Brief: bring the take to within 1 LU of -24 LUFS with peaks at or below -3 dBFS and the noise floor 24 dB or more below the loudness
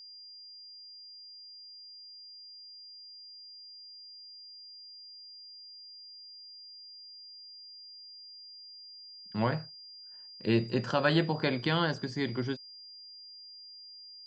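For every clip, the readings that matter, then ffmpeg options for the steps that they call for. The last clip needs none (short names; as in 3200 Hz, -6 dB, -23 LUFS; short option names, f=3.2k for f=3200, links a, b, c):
steady tone 4800 Hz; tone level -47 dBFS; loudness -37.0 LUFS; peak -13.5 dBFS; loudness target -24.0 LUFS
-> -af "bandreject=f=4.8k:w=30"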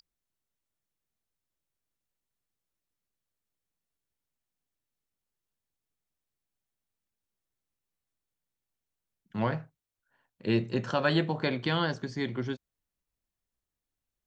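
steady tone none; loudness -30.5 LUFS; peak -13.5 dBFS; loudness target -24.0 LUFS
-> -af "volume=6.5dB"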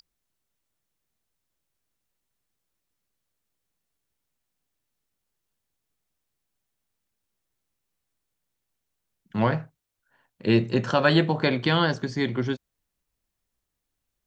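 loudness -24.0 LUFS; peak -7.0 dBFS; noise floor -82 dBFS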